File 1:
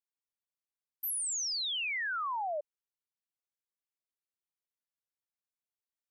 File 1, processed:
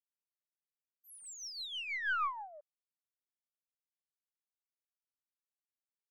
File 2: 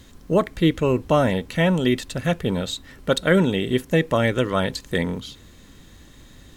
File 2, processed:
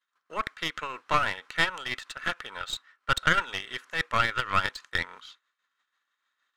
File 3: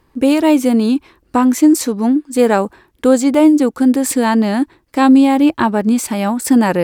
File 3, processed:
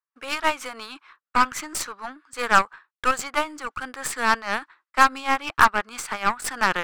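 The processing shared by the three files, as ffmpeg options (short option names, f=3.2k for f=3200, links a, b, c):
-af "agate=range=-33dB:threshold=-33dB:ratio=3:detection=peak,highpass=f=1.3k:t=q:w=3.5,adynamicsmooth=sensitivity=3:basefreq=5.6k,tremolo=f=6.2:d=0.47,aeval=exprs='0.841*(cos(1*acos(clip(val(0)/0.841,-1,1)))-cos(1*PI/2))+0.0335*(cos(7*acos(clip(val(0)/0.841,-1,1)))-cos(7*PI/2))+0.075*(cos(8*acos(clip(val(0)/0.841,-1,1)))-cos(8*PI/2))':c=same,volume=-1dB"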